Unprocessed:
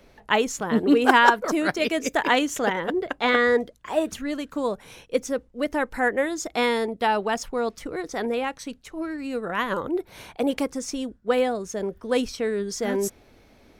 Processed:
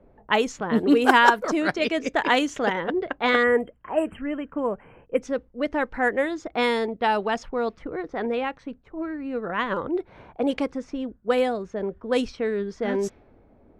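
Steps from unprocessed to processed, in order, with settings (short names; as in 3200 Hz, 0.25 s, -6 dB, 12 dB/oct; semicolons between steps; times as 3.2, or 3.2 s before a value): low-pass opened by the level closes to 810 Hz, open at -16 dBFS; spectral delete 3.43–5.22, 3200–7400 Hz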